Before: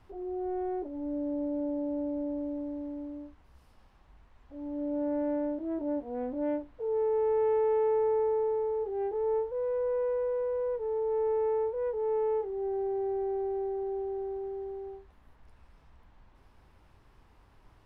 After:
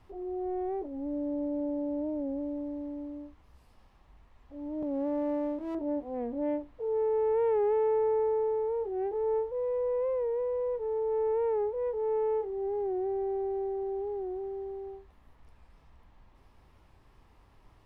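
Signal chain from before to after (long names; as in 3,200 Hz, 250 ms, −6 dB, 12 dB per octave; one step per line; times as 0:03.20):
0:04.83–0:05.75: lower of the sound and its delayed copy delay 3.5 ms
notch filter 1,500 Hz, Q 11
wow of a warped record 45 rpm, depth 100 cents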